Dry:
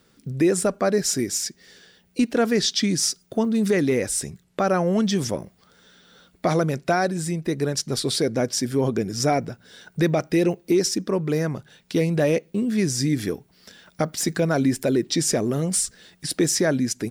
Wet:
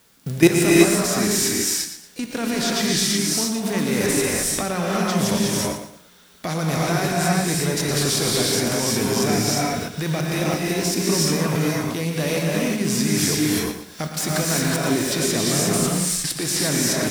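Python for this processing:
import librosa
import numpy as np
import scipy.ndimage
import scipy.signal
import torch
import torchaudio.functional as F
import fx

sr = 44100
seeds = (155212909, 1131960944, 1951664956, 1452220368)

y = fx.envelope_flatten(x, sr, power=0.6)
y = fx.quant_dither(y, sr, seeds[0], bits=10, dither='triangular')
y = fx.level_steps(y, sr, step_db=16)
y = fx.echo_feedback(y, sr, ms=116, feedback_pct=30, wet_db=-10)
y = fx.rev_gated(y, sr, seeds[1], gate_ms=390, shape='rising', drr_db=-4.0)
y = y * librosa.db_to_amplitude(6.5)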